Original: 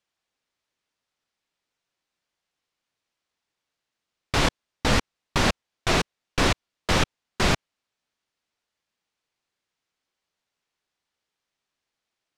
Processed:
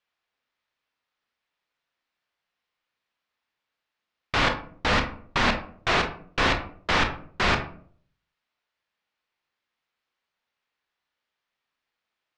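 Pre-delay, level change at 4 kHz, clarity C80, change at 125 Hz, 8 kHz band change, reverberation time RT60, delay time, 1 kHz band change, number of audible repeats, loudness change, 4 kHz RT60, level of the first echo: 22 ms, -1.0 dB, 14.5 dB, -4.5 dB, -8.5 dB, 0.55 s, no echo, +2.0 dB, no echo, 0.0 dB, 0.30 s, no echo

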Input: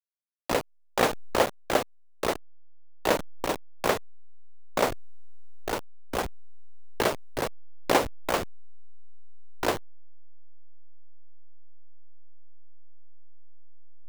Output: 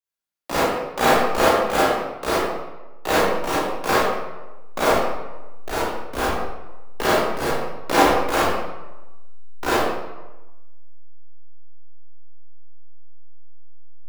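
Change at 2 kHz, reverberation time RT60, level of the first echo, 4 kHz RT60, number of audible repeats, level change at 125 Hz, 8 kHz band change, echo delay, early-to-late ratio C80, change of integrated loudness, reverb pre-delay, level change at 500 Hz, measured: +9.0 dB, 1.1 s, no echo, 0.70 s, no echo, +6.5 dB, +6.0 dB, no echo, 1.0 dB, +8.0 dB, 27 ms, +7.5 dB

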